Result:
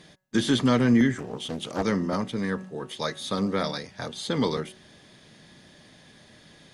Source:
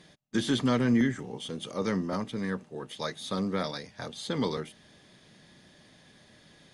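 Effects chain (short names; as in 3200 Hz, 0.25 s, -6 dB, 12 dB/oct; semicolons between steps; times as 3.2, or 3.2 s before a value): de-hum 186.1 Hz, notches 11; 1.18–1.83 Doppler distortion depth 0.6 ms; gain +4.5 dB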